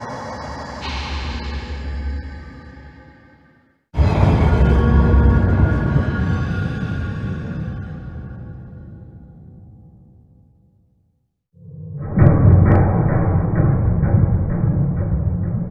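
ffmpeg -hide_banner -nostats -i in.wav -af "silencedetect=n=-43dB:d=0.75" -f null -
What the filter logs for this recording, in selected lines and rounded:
silence_start: 10.42
silence_end: 11.57 | silence_duration: 1.15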